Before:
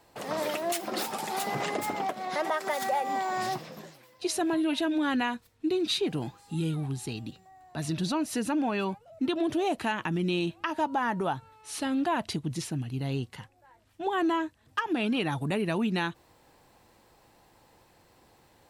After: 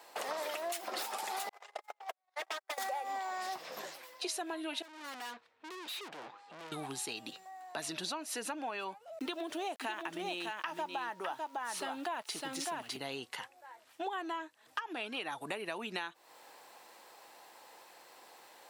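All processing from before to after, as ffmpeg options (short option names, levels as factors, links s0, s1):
-filter_complex "[0:a]asettb=1/sr,asplit=3[s0][s1][s2];[s0]atrim=end=1.494[s3];[s1]atrim=start=1.49:end=2.78,asetpts=PTS-STARTPTS,afade=t=in:d=0.004:c=qsin,afade=t=out:st=1.286:d=0.004:c=qsin,agate=range=0.00158:threshold=0.0398:ratio=16:release=100:detection=peak,highpass=f=440:w=0.5412,highpass=f=440:w=1.3066,aeval=exprs='0.0266*(abs(mod(val(0)/0.0266+3,4)-2)-1)':c=same[s4];[s2]atrim=start=2.776[s5];[s3][s4]acrossfade=d=0.004:c1=hsin:c2=qsin[s6];[s6][s5]acrossfade=d=0.004:c1=qsin:c2=hsin,asettb=1/sr,asplit=3[s7][s8][s9];[s7]atrim=end=4.824[s10];[s8]atrim=start=4.82:end=6.72,asetpts=PTS-STARTPTS,afade=t=in:d=0.004:c=qsin,afade=t=out:st=1.896:d=0.004:c=qsin,lowpass=2700,aeval=exprs='(tanh(200*val(0)+0.65)-tanh(0.65))/200':c=same[s11];[s9]atrim=start=6.716[s12];[s10][s11]acrossfade=d=0.004:c1=hsin:c2=qsin[s13];[s13][s12]acrossfade=d=0.004:c1=qsin:c2=hsin,asettb=1/sr,asplit=3[s14][s15][s16];[s14]atrim=end=9.194[s17];[s15]atrim=start=9.19:end=12.97,asetpts=PTS-STARTPTS,afade=t=in:d=0.004:c=qsin,afade=t=out:st=3.776:d=0.004:c=qsin,highpass=97,aeval=exprs='val(0)*gte(abs(val(0)),0.00398)':c=same,aecho=1:1:605:0.562,atrim=end_sample=166698[s18];[s16]atrim=start=12.966[s19];[s17][s18]acrossfade=d=0.004:c1=hsin:c2=qsin[s20];[s20][s19]acrossfade=d=0.004:c1=qsin:c2=hsin,highpass=580,acompressor=threshold=0.00708:ratio=6,volume=2.11"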